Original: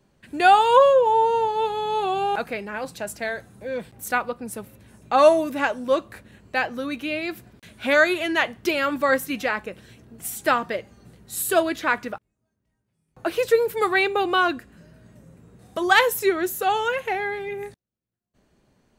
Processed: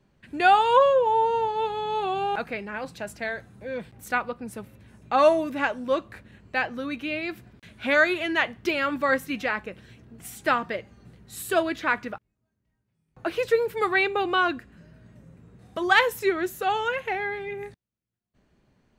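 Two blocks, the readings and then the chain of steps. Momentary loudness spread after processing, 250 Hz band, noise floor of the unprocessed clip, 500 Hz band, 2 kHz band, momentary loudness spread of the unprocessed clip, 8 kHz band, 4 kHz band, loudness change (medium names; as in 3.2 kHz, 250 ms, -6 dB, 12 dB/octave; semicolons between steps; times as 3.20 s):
17 LU, -2.5 dB, -76 dBFS, -3.5 dB, -1.5 dB, 16 LU, -9.0 dB, -3.0 dB, -3.0 dB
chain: FFT filter 120 Hz 0 dB, 560 Hz -4 dB, 2.2 kHz -1 dB, 4.8 kHz -5 dB, 11 kHz -11 dB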